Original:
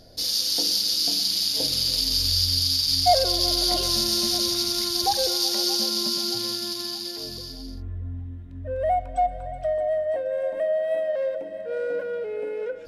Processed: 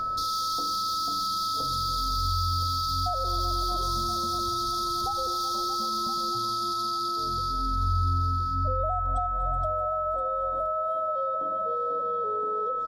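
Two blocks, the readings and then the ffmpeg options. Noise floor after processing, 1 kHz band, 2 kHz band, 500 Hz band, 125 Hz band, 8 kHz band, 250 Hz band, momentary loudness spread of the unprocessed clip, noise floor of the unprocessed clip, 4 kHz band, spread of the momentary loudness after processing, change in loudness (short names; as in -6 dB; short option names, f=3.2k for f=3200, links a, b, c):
-29 dBFS, +4.0 dB, under -20 dB, -7.5 dB, +4.5 dB, -11.5 dB, -5.5 dB, 13 LU, -37 dBFS, -11.0 dB, 2 LU, -5.0 dB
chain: -filter_complex "[0:a]acrossover=split=1200[a][b];[b]asoftclip=type=hard:threshold=-24dB[c];[a][c]amix=inputs=2:normalize=0,acompressor=threshold=-28dB:ratio=6,aecho=1:1:1021:0.211,acrossover=split=130[d][e];[e]acompressor=threshold=-60dB:ratio=1.5[f];[d][f]amix=inputs=2:normalize=0,afftfilt=real='re*(1-between(b*sr/4096,1200,3200))':imag='im*(1-between(b*sr/4096,1200,3200))':win_size=4096:overlap=0.75,highshelf=f=8.9k:g=-6,aeval=exprs='val(0)+0.0178*sin(2*PI*1300*n/s)':c=same,volume=8dB"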